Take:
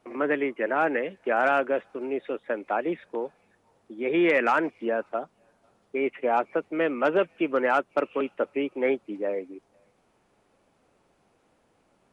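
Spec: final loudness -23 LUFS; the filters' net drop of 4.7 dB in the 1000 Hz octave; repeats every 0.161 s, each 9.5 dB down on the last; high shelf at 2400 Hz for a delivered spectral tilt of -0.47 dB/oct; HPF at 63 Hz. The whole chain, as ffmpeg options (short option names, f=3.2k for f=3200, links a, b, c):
-af "highpass=63,equalizer=f=1k:t=o:g=-5.5,highshelf=f=2.4k:g=-7.5,aecho=1:1:161|322|483|644:0.335|0.111|0.0365|0.012,volume=5.5dB"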